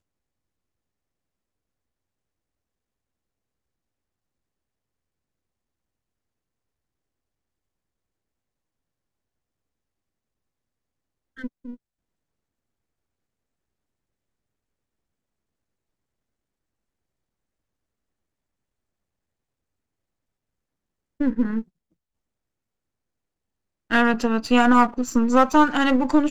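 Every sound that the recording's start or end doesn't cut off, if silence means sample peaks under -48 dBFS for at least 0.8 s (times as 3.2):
11.37–11.76
21.2–21.64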